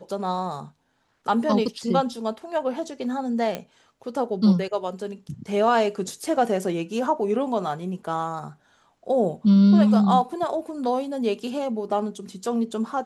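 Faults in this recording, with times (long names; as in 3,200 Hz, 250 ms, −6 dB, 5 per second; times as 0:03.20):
0:03.55: click −14 dBFS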